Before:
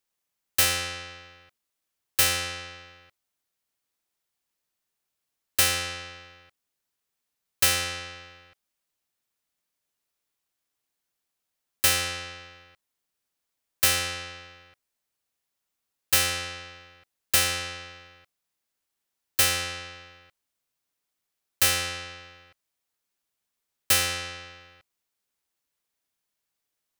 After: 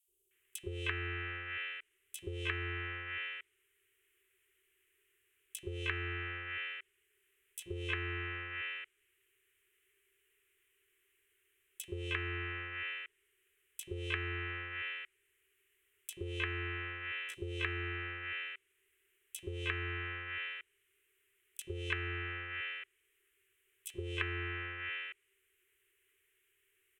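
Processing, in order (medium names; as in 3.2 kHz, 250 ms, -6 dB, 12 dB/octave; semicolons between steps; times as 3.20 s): harmony voices +12 st -15 dB; FFT filter 100 Hz 0 dB, 240 Hz -28 dB, 390 Hz +15 dB, 650 Hz -24 dB, 1.9 kHz +7 dB, 3 kHz +7 dB, 4.7 kHz -22 dB, 8.3 kHz -2 dB; compression 10:1, threshold -31 dBFS, peak gain reduction 15.5 dB; three bands offset in time highs, lows, mids 80/310 ms, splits 540/4200 Hz; low-pass that closes with the level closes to 1 kHz, closed at -36.5 dBFS; trim +9 dB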